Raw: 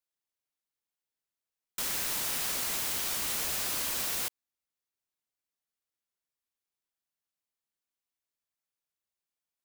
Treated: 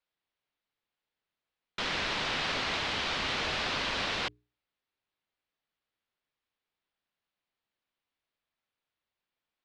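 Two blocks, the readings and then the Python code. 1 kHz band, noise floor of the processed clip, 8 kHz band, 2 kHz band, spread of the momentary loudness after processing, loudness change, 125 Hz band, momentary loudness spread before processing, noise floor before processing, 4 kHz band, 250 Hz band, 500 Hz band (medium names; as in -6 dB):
+7.5 dB, under -85 dBFS, -13.5 dB, +7.5 dB, 4 LU, -1.0 dB, +7.0 dB, 4 LU, under -85 dBFS, +4.5 dB, +6.5 dB, +7.5 dB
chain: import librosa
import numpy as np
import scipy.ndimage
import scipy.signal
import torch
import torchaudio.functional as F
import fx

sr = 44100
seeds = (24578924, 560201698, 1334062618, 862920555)

y = scipy.signal.sosfilt(scipy.signal.butter(4, 4000.0, 'lowpass', fs=sr, output='sos'), x)
y = fx.hum_notches(y, sr, base_hz=60, count=7)
y = y * librosa.db_to_amplitude(7.5)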